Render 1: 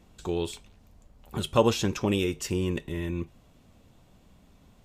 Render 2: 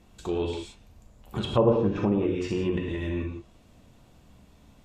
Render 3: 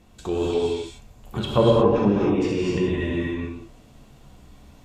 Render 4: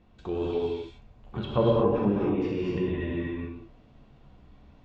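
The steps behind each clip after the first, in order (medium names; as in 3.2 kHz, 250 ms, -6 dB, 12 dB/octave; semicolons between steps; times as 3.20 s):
gated-style reverb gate 200 ms flat, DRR 1 dB; low-pass that closes with the level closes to 820 Hz, closed at -19 dBFS
gated-style reverb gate 280 ms rising, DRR -1 dB; trim +2.5 dB
distance through air 230 m; trim -5 dB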